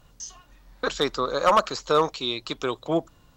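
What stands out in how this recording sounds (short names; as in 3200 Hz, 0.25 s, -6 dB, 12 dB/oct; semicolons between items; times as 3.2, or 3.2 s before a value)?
noise floor -58 dBFS; spectral tilt -4.0 dB/oct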